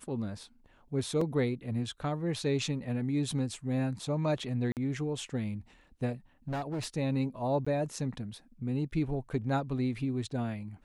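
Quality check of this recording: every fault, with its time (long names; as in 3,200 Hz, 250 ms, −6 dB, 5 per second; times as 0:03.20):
0:01.21: drop-out 3.9 ms
0:04.72–0:04.77: drop-out 48 ms
0:06.48–0:06.86: clipping −31 dBFS
0:07.65–0:07.67: drop-out 15 ms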